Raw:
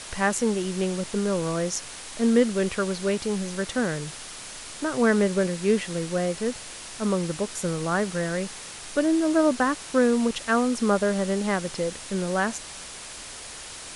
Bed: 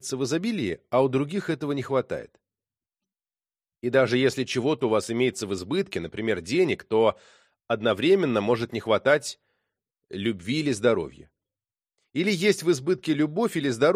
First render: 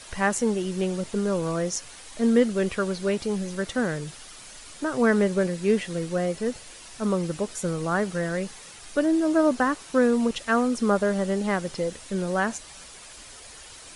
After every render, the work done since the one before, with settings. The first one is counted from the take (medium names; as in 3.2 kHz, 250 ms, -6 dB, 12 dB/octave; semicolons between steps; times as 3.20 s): noise reduction 8 dB, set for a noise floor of -40 dBFS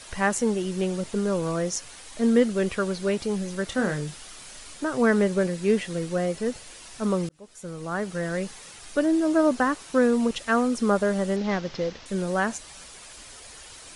3.68–4.75 s: doubling 27 ms -7 dB; 7.29–8.40 s: fade in linear; 11.36–12.06 s: CVSD coder 32 kbps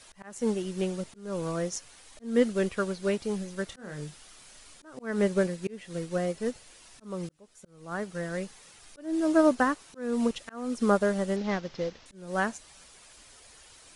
slow attack 273 ms; upward expansion 1.5:1, over -35 dBFS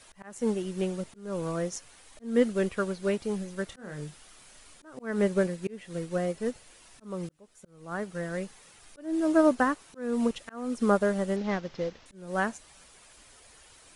peaking EQ 5.1 kHz -3.5 dB 1.4 oct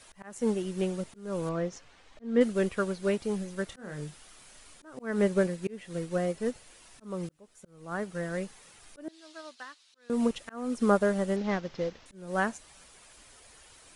1.49–2.41 s: distance through air 140 m; 9.08–10.10 s: band-pass filter 4.1 kHz, Q 2.4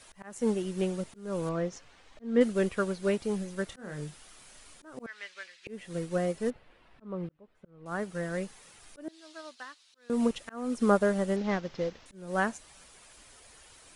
5.06–5.67 s: Butterworth band-pass 3.1 kHz, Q 0.94; 6.50–7.86 s: distance through air 420 m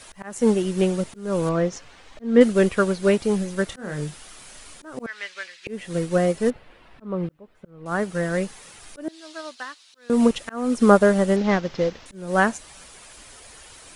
trim +9.5 dB